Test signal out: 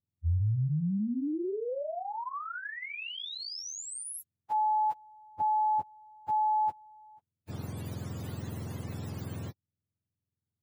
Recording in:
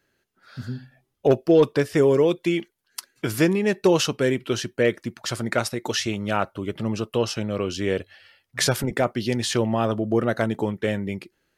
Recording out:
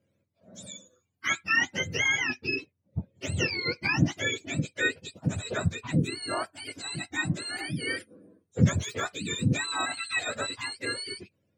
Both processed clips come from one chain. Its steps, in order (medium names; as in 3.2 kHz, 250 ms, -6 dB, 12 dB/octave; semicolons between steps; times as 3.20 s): spectrum inverted on a logarithmic axis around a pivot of 940 Hz; trim -5 dB